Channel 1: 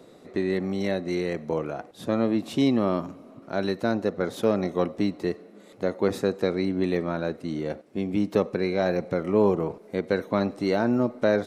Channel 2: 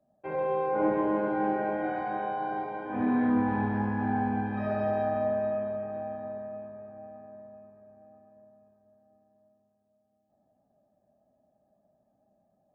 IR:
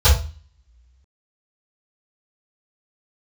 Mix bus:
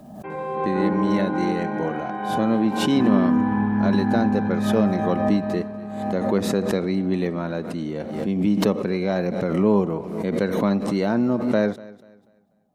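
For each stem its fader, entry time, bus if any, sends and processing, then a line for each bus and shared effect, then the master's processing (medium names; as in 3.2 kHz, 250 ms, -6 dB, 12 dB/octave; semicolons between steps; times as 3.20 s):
-0.5 dB, 0.30 s, no send, echo send -20.5 dB, none
+3.0 dB, 0.00 s, no send, no echo send, peaking EQ 590 Hz -9.5 dB 0.46 oct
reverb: none
echo: feedback delay 244 ms, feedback 31%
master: peaking EQ 1 kHz +3 dB 0.2 oct; small resonant body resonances 200/3000 Hz, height 7 dB; swell ahead of each attack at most 46 dB/s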